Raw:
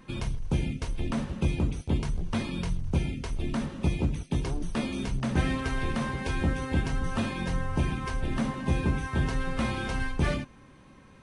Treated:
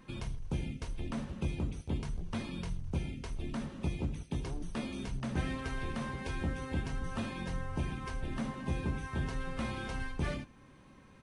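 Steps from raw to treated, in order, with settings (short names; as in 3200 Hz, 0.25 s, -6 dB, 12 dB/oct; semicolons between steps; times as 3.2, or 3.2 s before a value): in parallel at -3 dB: compressor, threshold -40 dBFS, peak gain reduction 18.5 dB; on the sum: echo 78 ms -19.5 dB; gain -9 dB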